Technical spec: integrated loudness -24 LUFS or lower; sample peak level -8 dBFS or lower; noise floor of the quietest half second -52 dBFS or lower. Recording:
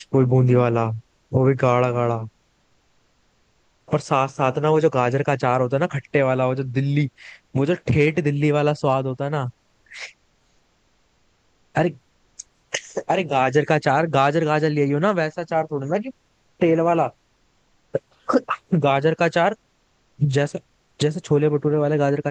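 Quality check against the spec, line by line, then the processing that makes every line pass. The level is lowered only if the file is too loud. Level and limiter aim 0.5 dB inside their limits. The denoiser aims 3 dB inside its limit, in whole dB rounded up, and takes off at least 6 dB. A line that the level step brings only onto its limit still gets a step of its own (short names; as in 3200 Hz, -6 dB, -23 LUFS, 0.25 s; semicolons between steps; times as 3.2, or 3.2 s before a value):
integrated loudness -21.0 LUFS: fail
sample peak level -3.5 dBFS: fail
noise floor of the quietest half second -63 dBFS: OK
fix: gain -3.5 dB; limiter -8.5 dBFS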